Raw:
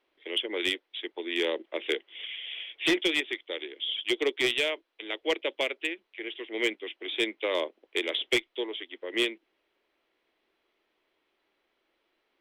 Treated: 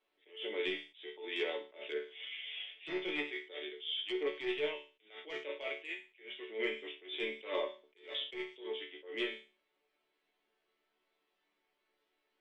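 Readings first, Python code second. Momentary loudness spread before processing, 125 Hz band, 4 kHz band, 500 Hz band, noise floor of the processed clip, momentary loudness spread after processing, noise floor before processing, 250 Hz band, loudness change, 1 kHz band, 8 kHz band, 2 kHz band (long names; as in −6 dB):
12 LU, below −10 dB, −11.0 dB, −7.5 dB, −82 dBFS, 10 LU, −77 dBFS, −10.5 dB, −9.5 dB, −8.0 dB, below −25 dB, −10.0 dB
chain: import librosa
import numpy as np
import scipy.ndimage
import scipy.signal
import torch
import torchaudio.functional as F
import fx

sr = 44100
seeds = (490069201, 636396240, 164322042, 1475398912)

y = fx.resonator_bank(x, sr, root=50, chord='major', decay_s=0.34)
y = fx.env_lowpass_down(y, sr, base_hz=2100.0, full_db=-39.0)
y = fx.attack_slew(y, sr, db_per_s=150.0)
y = y * 10.0 ** (10.0 / 20.0)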